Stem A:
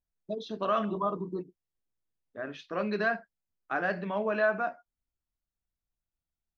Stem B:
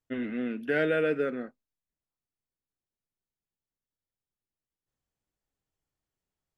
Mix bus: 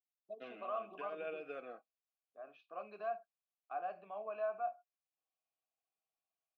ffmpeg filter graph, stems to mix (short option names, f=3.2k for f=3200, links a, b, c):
-filter_complex "[0:a]volume=-4.5dB,asplit=2[a][b];[1:a]highshelf=f=2.5k:g=11.5,aecho=1:1:6.2:0.4,acompressor=threshold=-26dB:ratio=4,adelay=300,volume=1.5dB[c];[b]apad=whole_len=303500[d];[c][d]sidechaincompress=threshold=-41dB:ratio=8:attack=44:release=135[e];[a][e]amix=inputs=2:normalize=0,asplit=3[f][g][h];[f]bandpass=f=730:t=q:w=8,volume=0dB[i];[g]bandpass=f=1.09k:t=q:w=8,volume=-6dB[j];[h]bandpass=f=2.44k:t=q:w=8,volume=-9dB[k];[i][j][k]amix=inputs=3:normalize=0"